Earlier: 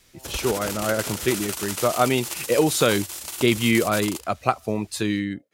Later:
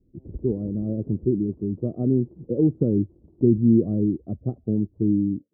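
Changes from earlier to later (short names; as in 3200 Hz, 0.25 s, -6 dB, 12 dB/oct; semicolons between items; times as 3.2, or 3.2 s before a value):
speech +5.0 dB; master: add inverse Chebyshev low-pass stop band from 2000 Hz, stop band 80 dB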